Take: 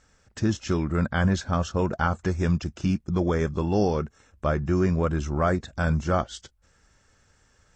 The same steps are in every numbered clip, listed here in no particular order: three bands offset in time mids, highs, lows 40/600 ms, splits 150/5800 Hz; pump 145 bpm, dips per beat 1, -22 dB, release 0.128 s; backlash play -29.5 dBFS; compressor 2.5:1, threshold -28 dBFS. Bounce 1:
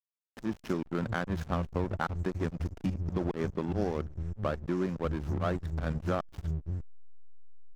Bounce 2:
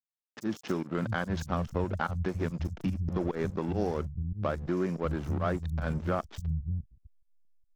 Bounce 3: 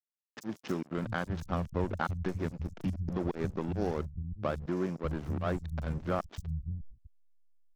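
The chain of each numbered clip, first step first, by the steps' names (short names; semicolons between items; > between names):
pump > three bands offset in time > compressor > backlash; backlash > pump > three bands offset in time > compressor; compressor > pump > backlash > three bands offset in time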